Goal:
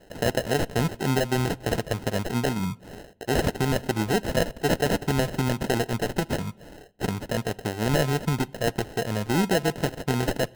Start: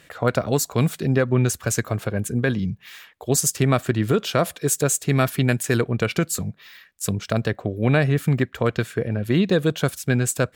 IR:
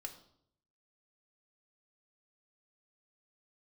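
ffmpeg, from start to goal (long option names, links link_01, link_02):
-filter_complex "[0:a]alimiter=limit=-11.5dB:level=0:latency=1:release=176,lowshelf=frequency=220:gain=-7,acrusher=samples=38:mix=1:aa=0.000001,asplit=2[link_01][link_02];[1:a]atrim=start_sample=2205,asetrate=31752,aresample=44100[link_03];[link_02][link_03]afir=irnorm=-1:irlink=0,volume=-14.5dB[link_04];[link_01][link_04]amix=inputs=2:normalize=0"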